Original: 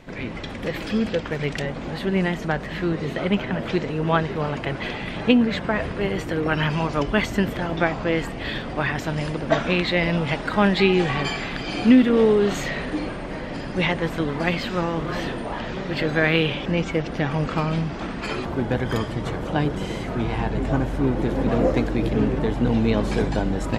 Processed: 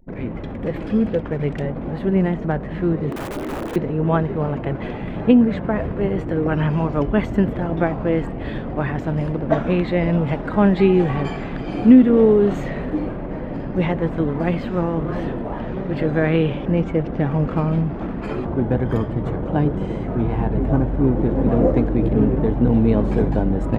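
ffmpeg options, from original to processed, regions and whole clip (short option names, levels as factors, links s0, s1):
-filter_complex "[0:a]asettb=1/sr,asplit=3[s0][s1][s2];[s0]atrim=end=3.114[s3];[s1]atrim=start=3.11:end=3.76,asetpts=PTS-STARTPTS,afade=t=in:d=0.004:c=qsin,afade=t=out:st=0.646:d=0.004:c=qsin,lowshelf=f=210:t=q:w=3:g=-12.5,aeval=exprs='(mod(11.9*val(0)+1,2)-1)/11.9':c=same[s4];[s2]atrim=start=3.756[s5];[s3][s4]acrossfade=d=0.004:c1=hsin:c2=qsin[s6];[s6][s5]acrossfade=d=0.004:c1=qsin:c2=hsin,equalizer=f=4900:t=o:w=1.1:g=-5.5,anlmdn=0.631,tiltshelf=f=1300:g=8,volume=0.708"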